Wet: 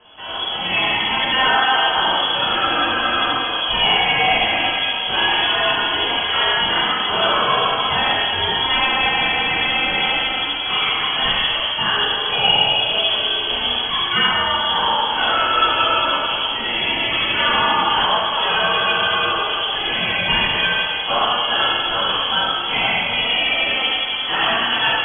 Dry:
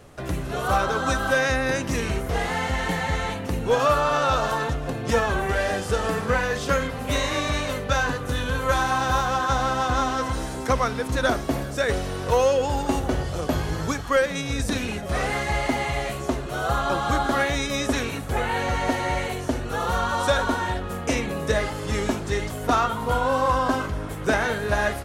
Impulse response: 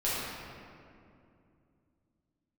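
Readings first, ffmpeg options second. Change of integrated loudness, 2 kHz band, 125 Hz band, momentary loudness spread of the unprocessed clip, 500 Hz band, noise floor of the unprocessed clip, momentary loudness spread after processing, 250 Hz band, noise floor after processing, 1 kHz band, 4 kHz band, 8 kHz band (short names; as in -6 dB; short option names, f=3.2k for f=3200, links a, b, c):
+7.5 dB, +8.5 dB, -8.0 dB, 6 LU, -2.0 dB, -32 dBFS, 4 LU, -3.5 dB, -23 dBFS, +5.5 dB, +19.0 dB, under -40 dB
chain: -filter_complex "[0:a]aexciter=amount=7.3:drive=7.7:freq=2.1k[a];[1:a]atrim=start_sample=2205[b];[a][b]afir=irnorm=-1:irlink=0,lowpass=f=2.9k:t=q:w=0.5098,lowpass=f=2.9k:t=q:w=0.6013,lowpass=f=2.9k:t=q:w=0.9,lowpass=f=2.9k:t=q:w=2.563,afreqshift=-3400,volume=-7.5dB"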